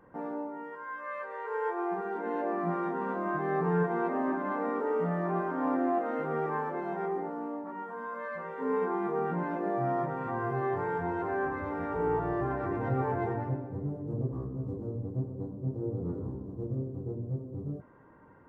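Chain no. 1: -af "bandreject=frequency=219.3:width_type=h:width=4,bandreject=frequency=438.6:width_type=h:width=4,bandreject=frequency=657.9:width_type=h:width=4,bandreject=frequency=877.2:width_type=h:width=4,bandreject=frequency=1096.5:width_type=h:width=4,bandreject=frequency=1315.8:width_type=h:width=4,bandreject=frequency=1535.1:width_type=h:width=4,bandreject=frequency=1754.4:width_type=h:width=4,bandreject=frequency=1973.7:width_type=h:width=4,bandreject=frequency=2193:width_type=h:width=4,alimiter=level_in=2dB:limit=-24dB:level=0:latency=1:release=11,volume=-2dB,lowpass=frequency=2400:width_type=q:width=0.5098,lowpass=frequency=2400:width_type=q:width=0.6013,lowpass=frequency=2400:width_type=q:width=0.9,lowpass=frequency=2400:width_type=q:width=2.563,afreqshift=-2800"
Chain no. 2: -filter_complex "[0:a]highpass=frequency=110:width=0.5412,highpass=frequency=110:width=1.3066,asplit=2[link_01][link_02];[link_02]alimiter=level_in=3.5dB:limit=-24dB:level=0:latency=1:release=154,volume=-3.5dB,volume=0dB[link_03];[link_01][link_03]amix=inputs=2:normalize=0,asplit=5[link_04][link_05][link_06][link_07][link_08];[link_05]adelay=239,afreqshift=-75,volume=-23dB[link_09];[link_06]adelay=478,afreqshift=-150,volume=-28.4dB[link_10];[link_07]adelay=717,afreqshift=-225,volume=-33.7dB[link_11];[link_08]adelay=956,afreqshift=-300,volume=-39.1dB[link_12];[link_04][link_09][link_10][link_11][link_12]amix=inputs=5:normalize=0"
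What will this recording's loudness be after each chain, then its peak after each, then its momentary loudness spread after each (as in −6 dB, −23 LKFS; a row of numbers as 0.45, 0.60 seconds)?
−32.0, −29.0 LKFS; −22.0, −15.5 dBFS; 6, 6 LU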